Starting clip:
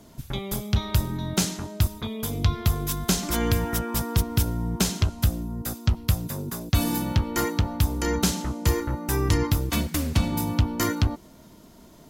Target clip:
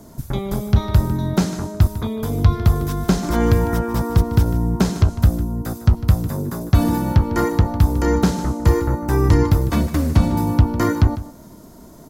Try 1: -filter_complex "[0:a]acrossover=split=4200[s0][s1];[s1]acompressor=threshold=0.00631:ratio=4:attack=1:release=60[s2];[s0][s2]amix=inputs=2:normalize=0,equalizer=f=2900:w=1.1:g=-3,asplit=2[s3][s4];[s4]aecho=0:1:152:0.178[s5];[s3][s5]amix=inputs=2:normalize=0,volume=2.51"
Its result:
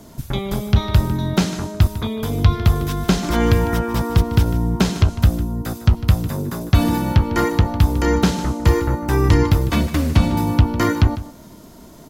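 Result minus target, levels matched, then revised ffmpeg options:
4 kHz band +5.5 dB
-filter_complex "[0:a]acrossover=split=4200[s0][s1];[s1]acompressor=threshold=0.00631:ratio=4:attack=1:release=60[s2];[s0][s2]amix=inputs=2:normalize=0,equalizer=f=2900:w=1.1:g=-11.5,asplit=2[s3][s4];[s4]aecho=0:1:152:0.178[s5];[s3][s5]amix=inputs=2:normalize=0,volume=2.51"

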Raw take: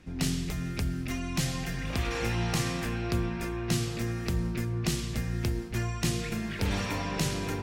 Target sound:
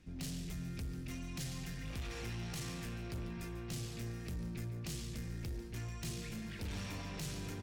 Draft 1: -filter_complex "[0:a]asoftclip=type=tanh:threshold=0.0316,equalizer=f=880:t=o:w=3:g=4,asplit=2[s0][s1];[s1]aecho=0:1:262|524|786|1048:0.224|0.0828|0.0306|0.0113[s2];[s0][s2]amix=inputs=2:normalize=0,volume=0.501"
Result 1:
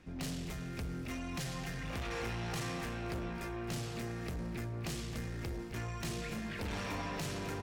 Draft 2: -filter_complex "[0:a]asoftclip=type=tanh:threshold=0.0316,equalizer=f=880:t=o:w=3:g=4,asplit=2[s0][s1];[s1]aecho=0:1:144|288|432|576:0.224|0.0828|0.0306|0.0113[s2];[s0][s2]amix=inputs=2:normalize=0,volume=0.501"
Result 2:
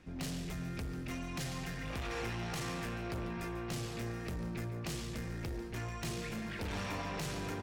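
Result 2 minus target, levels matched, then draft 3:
1 kHz band +7.0 dB
-filter_complex "[0:a]asoftclip=type=tanh:threshold=0.0316,equalizer=f=880:t=o:w=3:g=-6.5,asplit=2[s0][s1];[s1]aecho=0:1:144|288|432|576:0.224|0.0828|0.0306|0.0113[s2];[s0][s2]amix=inputs=2:normalize=0,volume=0.501"

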